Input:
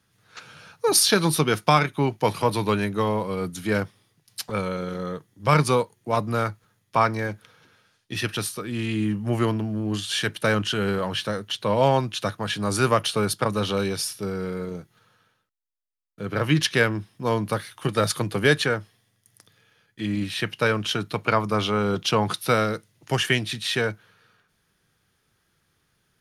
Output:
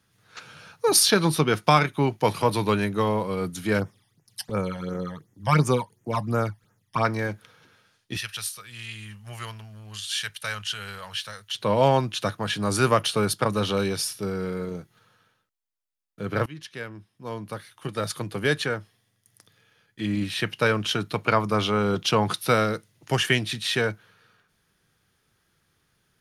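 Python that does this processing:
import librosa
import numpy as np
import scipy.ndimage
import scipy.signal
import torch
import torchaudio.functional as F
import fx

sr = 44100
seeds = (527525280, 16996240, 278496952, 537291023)

y = fx.high_shelf(x, sr, hz=5000.0, db=-6.5, at=(1.1, 1.64))
y = fx.phaser_stages(y, sr, stages=12, low_hz=390.0, high_hz=4200.0, hz=2.8, feedback_pct=25, at=(3.79, 7.05))
y = fx.tone_stack(y, sr, knobs='10-0-10', at=(8.17, 11.55))
y = fx.edit(y, sr, fx.fade_in_from(start_s=16.46, length_s=3.62, floor_db=-22.5), tone=tone)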